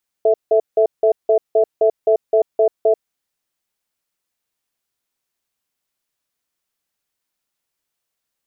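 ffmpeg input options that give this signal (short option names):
-f lavfi -i "aevalsrc='0.224*(sin(2*PI*440*t)+sin(2*PI*658*t))*clip(min(mod(t,0.26),0.09-mod(t,0.26))/0.005,0,1)':d=2.7:s=44100"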